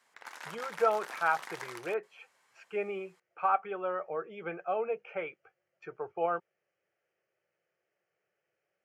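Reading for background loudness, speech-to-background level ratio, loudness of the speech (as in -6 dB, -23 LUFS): -44.5 LUFS, 10.5 dB, -34.0 LUFS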